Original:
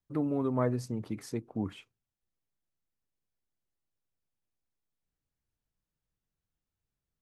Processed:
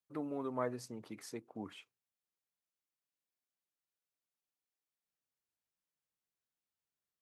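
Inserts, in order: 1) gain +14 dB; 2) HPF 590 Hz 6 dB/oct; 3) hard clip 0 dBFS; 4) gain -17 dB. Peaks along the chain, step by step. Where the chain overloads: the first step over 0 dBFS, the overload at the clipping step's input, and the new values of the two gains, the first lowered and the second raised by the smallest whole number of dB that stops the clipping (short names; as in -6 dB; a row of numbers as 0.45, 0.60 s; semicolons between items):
-1.5, -5.0, -5.0, -22.0 dBFS; no overload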